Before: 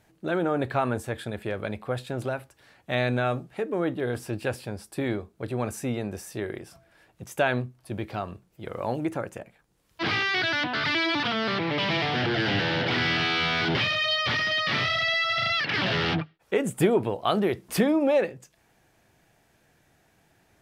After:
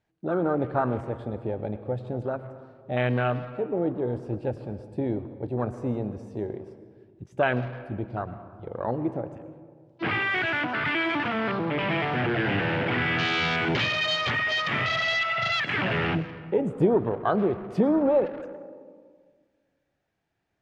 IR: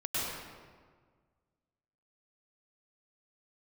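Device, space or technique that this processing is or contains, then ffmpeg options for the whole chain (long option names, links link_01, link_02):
saturated reverb return: -filter_complex "[0:a]afwtdn=0.0398,asplit=2[link_01][link_02];[1:a]atrim=start_sample=2205[link_03];[link_02][link_03]afir=irnorm=-1:irlink=0,asoftclip=type=tanh:threshold=-17dB,volume=-16dB[link_04];[link_01][link_04]amix=inputs=2:normalize=0,lowpass=5100"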